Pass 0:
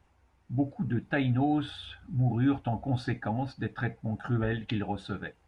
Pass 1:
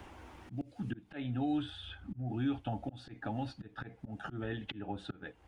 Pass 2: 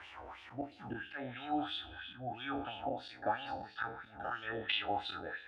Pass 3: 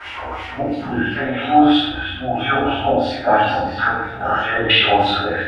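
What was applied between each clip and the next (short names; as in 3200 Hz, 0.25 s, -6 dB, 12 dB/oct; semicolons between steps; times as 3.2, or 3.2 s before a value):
thirty-one-band EQ 160 Hz -5 dB, 315 Hz +6 dB, 3150 Hz +5 dB; auto swell 0.408 s; three-band squash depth 70%; gain -3.5 dB
spectral trails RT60 0.86 s; resonant low shelf 110 Hz +10.5 dB, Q 1.5; LFO band-pass sine 3 Hz 570–3200 Hz; gain +9 dB
reverb RT60 0.70 s, pre-delay 3 ms, DRR -11.5 dB; gain +8 dB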